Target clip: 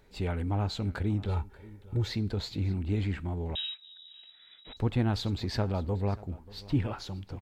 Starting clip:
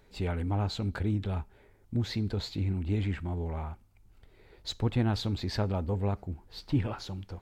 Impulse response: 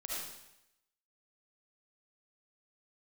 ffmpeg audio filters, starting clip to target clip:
-filter_complex "[0:a]asettb=1/sr,asplit=3[a][b][c];[a]atrim=end=1.284[d];[b]atrim=start=1.28:end=2.09,asetpts=PTS-STARTPTS,afade=t=in:d=0.004:c=qsin,afade=t=out:st=0.806:d=0.004:c=qsin,aecho=1:1:2.2:0.72,atrim=end_sample=35721[e];[c]atrim=start=2.086[f];[d][e]acrossfade=d=0.004:c1=hsin:c2=qsin[g];[g][f]acrossfade=d=0.004:c1=qsin:c2=hsin,aecho=1:1:585:0.1,asettb=1/sr,asplit=3[h][i][j];[h]atrim=end=3.554[k];[i]atrim=start=3.55:end=4.77,asetpts=PTS-STARTPTS,afade=t=in:d=0.004:c=qsin,afade=t=out:st=1.216:d=0.004:c=qsin,lowpass=f=3.3k:t=q:w=0.5098,lowpass=f=3.3k:t=q:w=0.6013,lowpass=f=3.3k:t=q:w=0.9,lowpass=f=3.3k:t=q:w=2.563,afreqshift=-3900[l];[j]atrim=start=4.766[m];[k][l]acrossfade=d=0.004:c1=hsin:c2=qsin[n];[n][m]acrossfade=d=0.004:c1=qsin:c2=hsin"

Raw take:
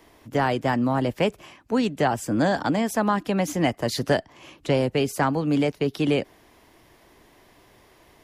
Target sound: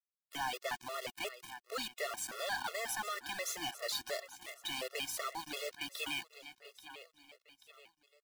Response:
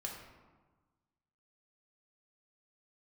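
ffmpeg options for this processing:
-filter_complex "[0:a]highpass=1.1k,equalizer=f=3.8k:w=3.9:g=6.5,asplit=2[a][b];[b]alimiter=level_in=0.5dB:limit=-24dB:level=0:latency=1:release=299,volume=-0.5dB,volume=-2dB[c];[a][c]amix=inputs=2:normalize=0,aeval=exprs='sgn(val(0))*max(abs(val(0))-0.00708,0)':c=same,tremolo=f=280:d=0.182,acrusher=bits=6:mix=0:aa=0.000001,aecho=1:1:835|1670|2505:0.119|0.0511|0.022,asoftclip=type=tanh:threshold=-31dB,afftfilt=real='re*gt(sin(2*PI*2.8*pts/sr)*(1-2*mod(floor(b*sr/1024/360),2)),0)':imag='im*gt(sin(2*PI*2.8*pts/sr)*(1-2*mod(floor(b*sr/1024/360),2)),0)':win_size=1024:overlap=0.75,volume=1dB"

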